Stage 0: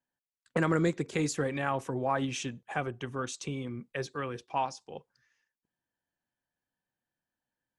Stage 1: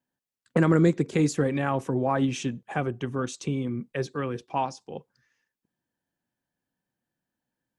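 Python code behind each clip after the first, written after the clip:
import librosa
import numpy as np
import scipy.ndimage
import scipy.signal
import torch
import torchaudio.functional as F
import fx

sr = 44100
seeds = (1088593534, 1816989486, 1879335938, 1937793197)

y = fx.peak_eq(x, sr, hz=210.0, db=8.0, octaves=2.6)
y = y * 10.0 ** (1.0 / 20.0)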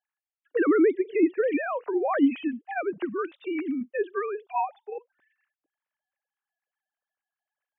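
y = fx.sine_speech(x, sr)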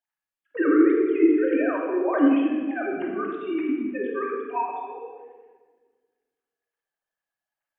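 y = fx.room_shoebox(x, sr, seeds[0], volume_m3=1500.0, walls='mixed', distance_m=2.7)
y = y * 10.0 ** (-3.5 / 20.0)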